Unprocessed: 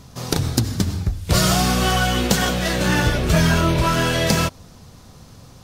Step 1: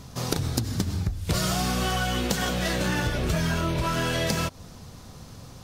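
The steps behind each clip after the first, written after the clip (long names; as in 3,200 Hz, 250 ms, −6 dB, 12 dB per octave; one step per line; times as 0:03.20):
downward compressor 5 to 1, threshold −23 dBFS, peak gain reduction 10.5 dB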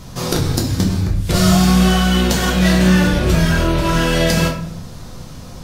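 rectangular room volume 85 cubic metres, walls mixed, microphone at 0.89 metres
level +5.5 dB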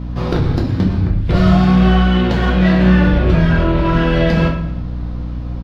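high-frequency loss of the air 360 metres
mains hum 60 Hz, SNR 10 dB
repeating echo 115 ms, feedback 45%, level −16.5 dB
level +2 dB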